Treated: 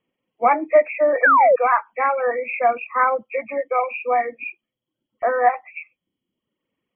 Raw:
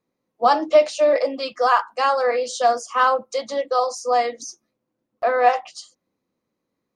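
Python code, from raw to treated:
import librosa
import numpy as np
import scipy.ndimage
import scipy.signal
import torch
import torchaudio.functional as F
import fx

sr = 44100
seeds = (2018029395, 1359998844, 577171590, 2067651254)

y = fx.freq_compress(x, sr, knee_hz=1800.0, ratio=4.0)
y = fx.dereverb_blind(y, sr, rt60_s=0.84)
y = fx.spec_paint(y, sr, seeds[0], shape='fall', start_s=1.23, length_s=0.33, low_hz=470.0, high_hz=1800.0, level_db=-13.0)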